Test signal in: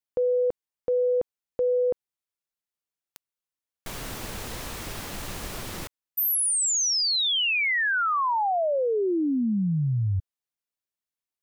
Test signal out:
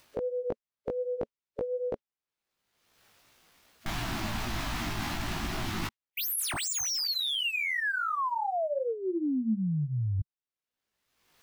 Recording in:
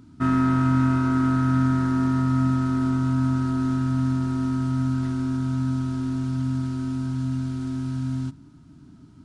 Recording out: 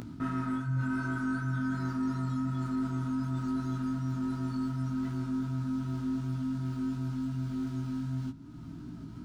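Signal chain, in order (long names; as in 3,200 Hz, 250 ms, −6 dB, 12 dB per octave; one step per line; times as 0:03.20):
running median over 5 samples
noise reduction from a noise print of the clip's start 15 dB
in parallel at +1 dB: upward compression, threshold −23 dBFS
on the sum: chorus effect 2.7 Hz, delay 16.5 ms, depth 2.4 ms
reversed playback
downward compressor 6 to 1, threshold −29 dBFS
reversed playback
dynamic equaliser 230 Hz, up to +4 dB, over −46 dBFS, Q 5.6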